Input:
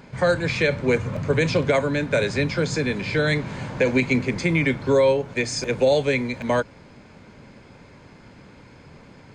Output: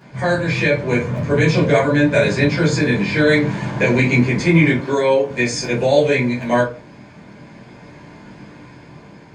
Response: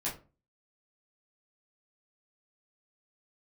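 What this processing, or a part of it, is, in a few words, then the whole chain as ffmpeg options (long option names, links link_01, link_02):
far laptop microphone: -filter_complex "[1:a]atrim=start_sample=2205[link_01];[0:a][link_01]afir=irnorm=-1:irlink=0,highpass=frequency=110:poles=1,dynaudnorm=framelen=420:gausssize=7:maxgain=6.5dB,asettb=1/sr,asplit=3[link_02][link_03][link_04];[link_02]atrim=end=4.804[link_05];[link_03]atrim=start=4.8:end=5.31,asetpts=PTS-STARTPTS,afade=type=in:duration=0.004:curve=qsin,afade=type=out:start_time=0.506:duration=0.004:curve=qsin,highpass=220[link_06];[link_04]atrim=start=5.306[link_07];[link_05][link_06]acrossfade=duration=0.004:curve1=hsin:curve2=qsin[link_08];[link_08][link_07]acrossfade=duration=0.004:curve1=qsin:curve2=hsin"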